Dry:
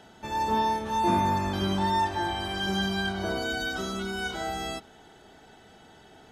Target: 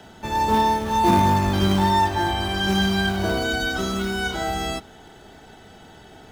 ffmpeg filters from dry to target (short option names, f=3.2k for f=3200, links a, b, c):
-filter_complex "[0:a]lowshelf=f=130:g=6.5,acrossover=split=110|620|2600[a][b][c][d];[b]acrusher=bits=3:mode=log:mix=0:aa=0.000001[e];[a][e][c][d]amix=inputs=4:normalize=0,volume=6dB"